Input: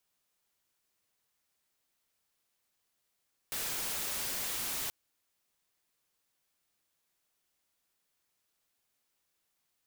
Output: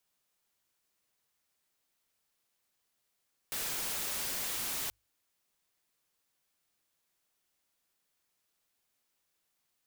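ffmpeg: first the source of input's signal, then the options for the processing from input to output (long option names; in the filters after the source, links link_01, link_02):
-f lavfi -i "anoisesrc=color=white:amplitude=0.0274:duration=1.38:sample_rate=44100:seed=1"
-af "bandreject=frequency=50:width_type=h:width=6,bandreject=frequency=100:width_type=h:width=6"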